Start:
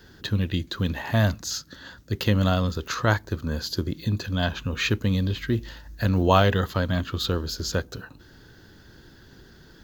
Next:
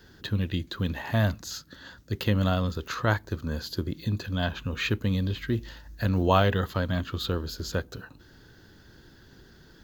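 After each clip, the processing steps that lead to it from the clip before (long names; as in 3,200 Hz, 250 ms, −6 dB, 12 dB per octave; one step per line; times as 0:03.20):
dynamic equaliser 5,800 Hz, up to −6 dB, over −46 dBFS, Q 1.8
level −3 dB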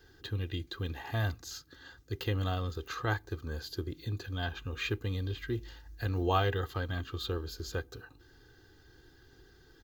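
comb filter 2.5 ms, depth 70%
level −8 dB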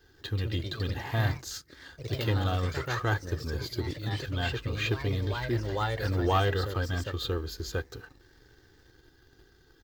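delay with pitch and tempo change per echo 163 ms, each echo +2 semitones, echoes 3, each echo −6 dB
leveller curve on the samples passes 1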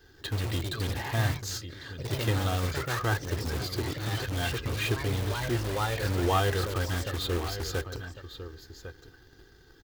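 single-tap delay 1,101 ms −14.5 dB
in parallel at −5.5 dB: wrap-around overflow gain 30 dB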